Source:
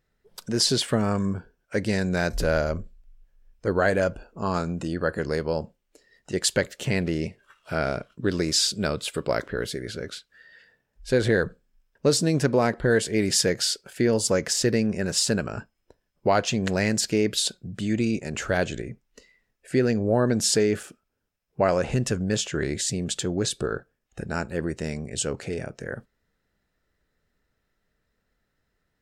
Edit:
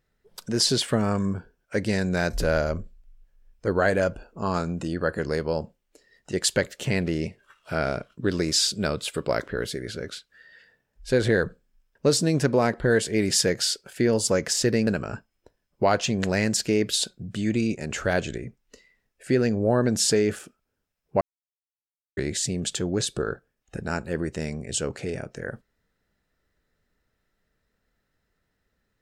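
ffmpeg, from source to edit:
ffmpeg -i in.wav -filter_complex "[0:a]asplit=4[link_01][link_02][link_03][link_04];[link_01]atrim=end=14.872[link_05];[link_02]atrim=start=15.308:end=21.65,asetpts=PTS-STARTPTS,afade=type=out:start_time=6.338:duration=0.004:curve=hsin[link_06];[link_03]atrim=start=21.65:end=22.61,asetpts=PTS-STARTPTS,volume=0[link_07];[link_04]atrim=start=22.61,asetpts=PTS-STARTPTS,afade=type=in:duration=0.004:curve=hsin[link_08];[link_06][link_07][link_08]concat=n=3:v=0:a=1[link_09];[link_05][link_09]acrossfade=duration=0.004:curve1=hsin:curve2=hsin" out.wav

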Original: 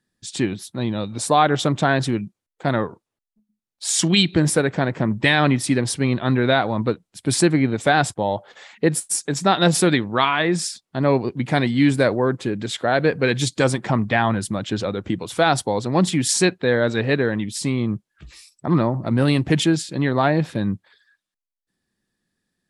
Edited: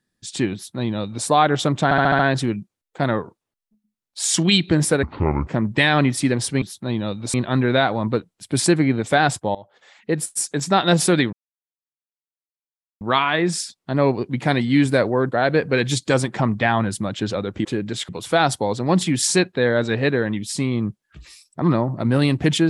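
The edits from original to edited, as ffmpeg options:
ffmpeg -i in.wav -filter_complex "[0:a]asplit=15[link_01][link_02][link_03][link_04][link_05][link_06][link_07][link_08][link_09][link_10][link_11][link_12][link_13][link_14][link_15];[link_01]atrim=end=1.912[link_16];[link_02]atrim=start=1.838:end=1.912[link_17];[link_03]atrim=start=1.838:end=1.912[link_18];[link_04]atrim=start=1.838:end=1.912[link_19];[link_05]atrim=start=1.838:end=1.912[link_20];[link_06]atrim=start=1.838:end=4.684[link_21];[link_07]atrim=start=4.68:end=4.93,asetpts=PTS-STARTPTS,asetrate=25137,aresample=44100,atrim=end_sample=19342,asetpts=PTS-STARTPTS[link_22];[link_08]atrim=start=4.926:end=6.082[link_23];[link_09]atrim=start=0.538:end=1.262[link_24];[link_10]atrim=start=6.078:end=8.29,asetpts=PTS-STARTPTS,afade=type=out:start_time=2.208:duration=0.004:curve=hsin:silence=0.105925[link_25];[link_11]atrim=start=8.29:end=10.07,asetpts=PTS-STARTPTS,afade=type=in:duration=0.94:silence=0.105925,afade=type=out:start_time=1.776:duration=0.004:curve=hsin,apad=pad_dur=1.68[link_26];[link_12]atrim=start=10.07:end=12.382,asetpts=PTS-STARTPTS,afade=type=in:duration=0.004:curve=hsin[link_27];[link_13]atrim=start=12.818:end=15.152[link_28];[link_14]atrim=start=12.378:end=12.822[link_29];[link_15]atrim=start=15.148[link_30];[link_16][link_17]acrossfade=duration=0.004:curve1=hsin:curve2=hsin[link_31];[link_31][link_18]acrossfade=duration=0.004:curve1=hsin:curve2=hsin[link_32];[link_32][link_19]acrossfade=duration=0.004:curve1=hsin:curve2=hsin[link_33];[link_33][link_20]acrossfade=duration=0.004:curve1=hsin:curve2=hsin[link_34];[link_34][link_21]acrossfade=duration=0.004:curve1=hsin:curve2=hsin[link_35];[link_35][link_22]acrossfade=duration=0.004:curve1=hsin:curve2=hsin[link_36];[link_36][link_23]acrossfade=duration=0.004:curve1=hsin:curve2=hsin[link_37];[link_37][link_24]acrossfade=duration=0.004:curve1=hsin:curve2=hsin[link_38];[link_25][link_26][link_27]concat=n=3:v=0:a=1[link_39];[link_38][link_39]acrossfade=duration=0.004:curve1=hsin:curve2=hsin[link_40];[link_40][link_28]acrossfade=duration=0.004:curve1=hsin:curve2=hsin[link_41];[link_41][link_29]acrossfade=duration=0.004:curve1=hsin:curve2=hsin[link_42];[link_42][link_30]acrossfade=duration=0.004:curve1=hsin:curve2=hsin" out.wav

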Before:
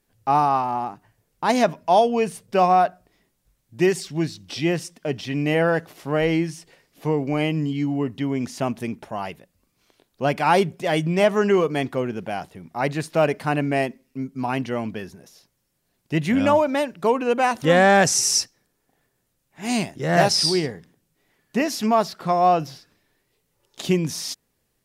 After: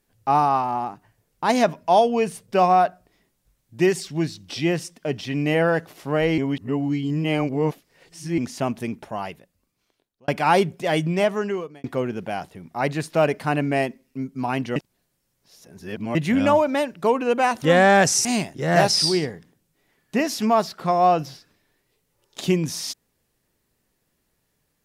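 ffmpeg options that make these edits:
ffmpeg -i in.wav -filter_complex "[0:a]asplit=8[link_01][link_02][link_03][link_04][link_05][link_06][link_07][link_08];[link_01]atrim=end=6.382[link_09];[link_02]atrim=start=6.378:end=8.382,asetpts=PTS-STARTPTS,areverse[link_10];[link_03]atrim=start=8.378:end=10.28,asetpts=PTS-STARTPTS,afade=type=out:start_time=0.772:duration=1.13[link_11];[link_04]atrim=start=10.28:end=11.84,asetpts=PTS-STARTPTS,afade=type=in:duration=0.004:curve=hsin,afade=type=out:start_time=0.75:duration=0.81[link_12];[link_05]atrim=start=11.84:end=14.762,asetpts=PTS-STARTPTS,afade=type=in:duration=0.004:curve=hsin[link_13];[link_06]atrim=start=14.758:end=16.152,asetpts=PTS-STARTPTS,areverse[link_14];[link_07]atrim=start=16.148:end=18.252[link_15];[link_08]atrim=start=19.658[link_16];[link_09][link_10]acrossfade=duration=0.004:curve1=hsin:curve2=hsin[link_17];[link_11][link_12][link_13]concat=n=3:v=0:a=1[link_18];[link_17][link_18]acrossfade=duration=0.004:curve1=hsin:curve2=hsin[link_19];[link_19][link_14]acrossfade=duration=0.004:curve1=hsin:curve2=hsin[link_20];[link_20][link_15]acrossfade=duration=0.004:curve1=hsin:curve2=hsin[link_21];[link_21][link_16]acrossfade=duration=0.004:curve1=hsin:curve2=hsin" out.wav

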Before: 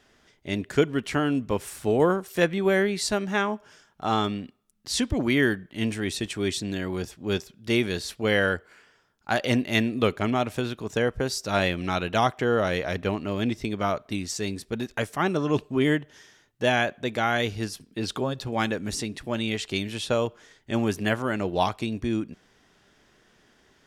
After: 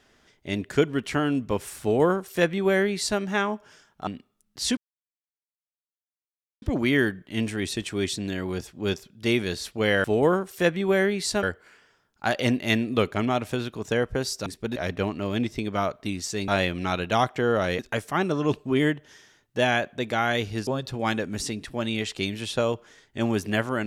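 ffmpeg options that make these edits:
ffmpeg -i in.wav -filter_complex "[0:a]asplit=10[link_01][link_02][link_03][link_04][link_05][link_06][link_07][link_08][link_09][link_10];[link_01]atrim=end=4.072[link_11];[link_02]atrim=start=4.358:end=5.06,asetpts=PTS-STARTPTS,afade=type=out:start_time=0.698:duration=0.004:curve=hsin,apad=pad_dur=1.85[link_12];[link_03]atrim=start=5.06:end=8.482,asetpts=PTS-STARTPTS,afade=type=in:duration=0.004:curve=hsin[link_13];[link_04]atrim=start=1.808:end=3.202[link_14];[link_05]atrim=start=8.478:end=11.512[link_15];[link_06]atrim=start=14.538:end=14.842[link_16];[link_07]atrim=start=12.818:end=14.542[link_17];[link_08]atrim=start=11.508:end=12.822[link_18];[link_09]atrim=start=14.838:end=17.722[link_19];[link_10]atrim=start=18.198[link_20];[link_12][link_13]concat=n=2:v=0:a=1[link_21];[link_11][link_21]acrossfade=duration=0.004:curve1=hsin:curve2=hsin[link_22];[link_22][link_14]acrossfade=duration=0.004:curve1=hsin:curve2=hsin[link_23];[link_23][link_15]acrossfade=duration=0.004:curve1=hsin:curve2=hsin[link_24];[link_24][link_16]acrossfade=duration=0.004:curve1=hsin:curve2=hsin[link_25];[link_25][link_17]acrossfade=duration=0.004:curve1=hsin:curve2=hsin[link_26];[link_26][link_18]acrossfade=duration=0.004:curve1=hsin:curve2=hsin[link_27];[link_27][link_19]acrossfade=duration=0.004:curve1=hsin:curve2=hsin[link_28];[link_28][link_20]acrossfade=duration=0.004:curve1=hsin:curve2=hsin" out.wav

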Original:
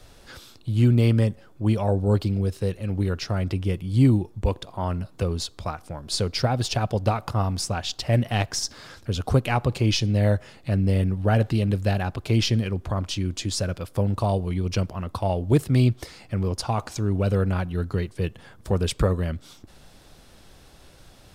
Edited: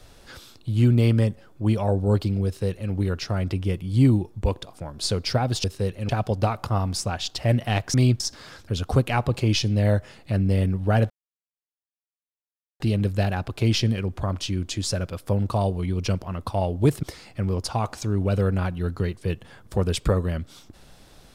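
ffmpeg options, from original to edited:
ffmpeg -i in.wav -filter_complex "[0:a]asplit=8[link_01][link_02][link_03][link_04][link_05][link_06][link_07][link_08];[link_01]atrim=end=4.732[link_09];[link_02]atrim=start=5.818:end=6.732[link_10];[link_03]atrim=start=2.458:end=2.912[link_11];[link_04]atrim=start=6.728:end=8.582[link_12];[link_05]atrim=start=15.708:end=15.972[link_13];[link_06]atrim=start=8.578:end=11.48,asetpts=PTS-STARTPTS,afade=type=out:start_time=2.898:duration=0.004:curve=hsin,apad=pad_dur=1.7[link_14];[link_07]atrim=start=11.48:end=15.712,asetpts=PTS-STARTPTS,afade=type=in:duration=0.004:curve=hsin[link_15];[link_08]atrim=start=15.968[link_16];[link_09][link_10]acrossfade=duration=0.004:curve1=hsin:curve2=hsin[link_17];[link_17][link_11]acrossfade=duration=0.004:curve1=hsin:curve2=hsin[link_18];[link_18][link_12]acrossfade=duration=0.004:curve1=hsin:curve2=hsin[link_19];[link_19][link_13]acrossfade=duration=0.004:curve1=hsin:curve2=hsin[link_20];[link_14][link_15]concat=n=2:v=0:a=1[link_21];[link_20][link_21]acrossfade=duration=0.004:curve1=hsin:curve2=hsin[link_22];[link_22][link_16]acrossfade=duration=0.004:curve1=hsin:curve2=hsin" out.wav

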